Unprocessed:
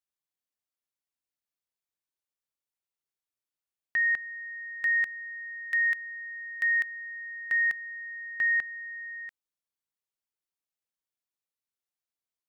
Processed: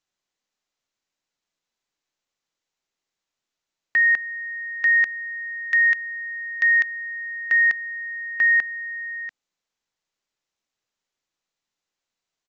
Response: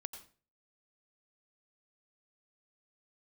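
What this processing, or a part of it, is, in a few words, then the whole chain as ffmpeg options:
Bluetooth headset: -af "highpass=150,aresample=16000,aresample=44100,volume=8dB" -ar 16000 -c:a sbc -b:a 64k

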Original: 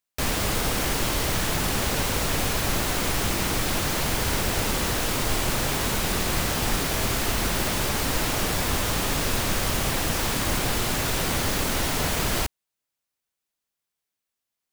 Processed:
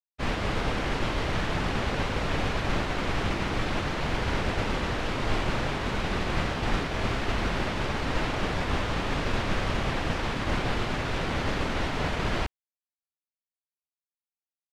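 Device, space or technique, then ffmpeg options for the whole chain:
hearing-loss simulation: -af "lowpass=3000,agate=range=-33dB:threshold=-23dB:ratio=3:detection=peak"

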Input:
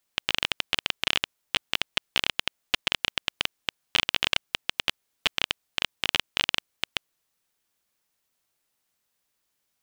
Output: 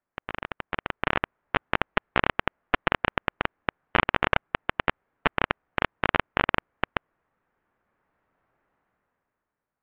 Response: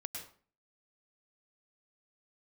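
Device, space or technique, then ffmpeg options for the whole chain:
action camera in a waterproof case: -af "lowpass=frequency=1700:width=0.5412,lowpass=frequency=1700:width=1.3066,dynaudnorm=framelen=150:gausssize=13:maxgain=14dB" -ar 22050 -c:a aac -b:a 64k

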